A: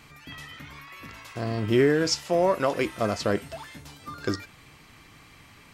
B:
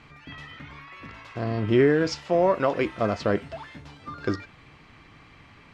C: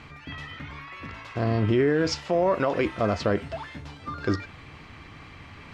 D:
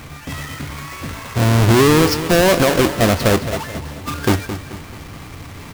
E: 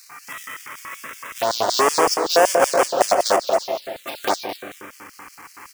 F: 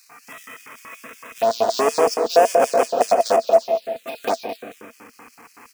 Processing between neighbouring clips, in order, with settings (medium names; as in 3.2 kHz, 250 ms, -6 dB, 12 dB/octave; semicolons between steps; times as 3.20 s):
Bessel low-pass 2.9 kHz, order 2; trim +1.5 dB
peaking EQ 83 Hz +7.5 dB 0.34 oct; reverse; upward compressor, threshold -42 dBFS; reverse; peak limiter -17 dBFS, peak gain reduction 7 dB; trim +3 dB
square wave that keeps the level; feedback delay 217 ms, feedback 42%, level -11.5 dB; trim +5.5 dB
filtered feedback delay 176 ms, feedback 75%, low-pass 1.2 kHz, level -6 dB; LFO high-pass square 5.3 Hz 710–4400 Hz; touch-sensitive phaser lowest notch 540 Hz, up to 4 kHz, full sweep at -12 dBFS
small resonant body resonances 240/460/660/2500 Hz, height 13 dB, ringing for 50 ms; trim -6.5 dB